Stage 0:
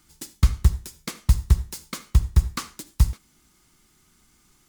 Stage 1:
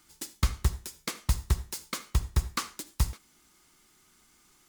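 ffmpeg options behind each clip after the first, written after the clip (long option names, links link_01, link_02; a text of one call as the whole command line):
ffmpeg -i in.wav -af "bass=frequency=250:gain=-9,treble=frequency=4000:gain=-1" out.wav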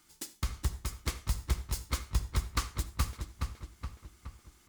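ffmpeg -i in.wav -filter_complex "[0:a]alimiter=limit=-16dB:level=0:latency=1:release=144,asplit=2[link_01][link_02];[link_02]adelay=420,lowpass=frequency=3900:poles=1,volume=-4dB,asplit=2[link_03][link_04];[link_04]adelay=420,lowpass=frequency=3900:poles=1,volume=0.55,asplit=2[link_05][link_06];[link_06]adelay=420,lowpass=frequency=3900:poles=1,volume=0.55,asplit=2[link_07][link_08];[link_08]adelay=420,lowpass=frequency=3900:poles=1,volume=0.55,asplit=2[link_09][link_10];[link_10]adelay=420,lowpass=frequency=3900:poles=1,volume=0.55,asplit=2[link_11][link_12];[link_12]adelay=420,lowpass=frequency=3900:poles=1,volume=0.55,asplit=2[link_13][link_14];[link_14]adelay=420,lowpass=frequency=3900:poles=1,volume=0.55[link_15];[link_03][link_05][link_07][link_09][link_11][link_13][link_15]amix=inputs=7:normalize=0[link_16];[link_01][link_16]amix=inputs=2:normalize=0,volume=-2.5dB" out.wav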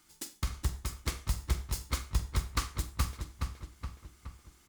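ffmpeg -i in.wav -filter_complex "[0:a]asplit=2[link_01][link_02];[link_02]adelay=44,volume=-13dB[link_03];[link_01][link_03]amix=inputs=2:normalize=0" out.wav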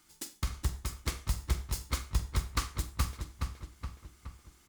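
ffmpeg -i in.wav -af anull out.wav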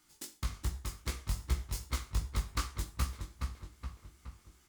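ffmpeg -i in.wav -af "flanger=delay=16:depth=6.1:speed=2.6" out.wav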